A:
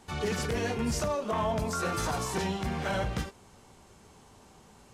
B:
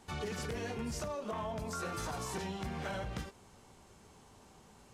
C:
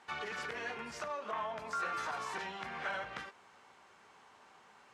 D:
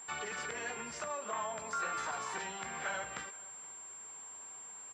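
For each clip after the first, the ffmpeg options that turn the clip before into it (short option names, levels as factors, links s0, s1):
-af "acompressor=threshold=0.0251:ratio=6,volume=0.668"
-af "bandpass=f=1600:t=q:w=1.1:csg=0,volume=2.11"
-af "aeval=exprs='val(0)+0.00447*sin(2*PI*7400*n/s)':c=same,aresample=22050,aresample=44100,aecho=1:1:473:0.0708"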